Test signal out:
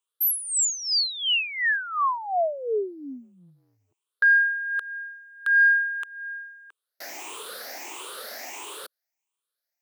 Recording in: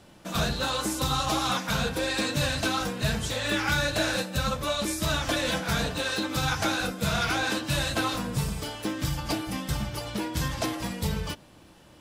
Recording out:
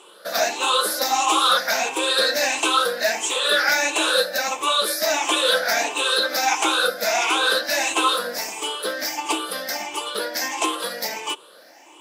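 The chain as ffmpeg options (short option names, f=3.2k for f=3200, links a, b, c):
-af "afftfilt=real='re*pow(10,15/40*sin(2*PI*(0.67*log(max(b,1)*sr/1024/100)/log(2)-(1.5)*(pts-256)/sr)))':imag='im*pow(10,15/40*sin(2*PI*(0.67*log(max(b,1)*sr/1024/100)/log(2)-(1.5)*(pts-256)/sr)))':win_size=1024:overlap=0.75,highpass=f=390:w=0.5412,highpass=f=390:w=1.3066,acontrast=62"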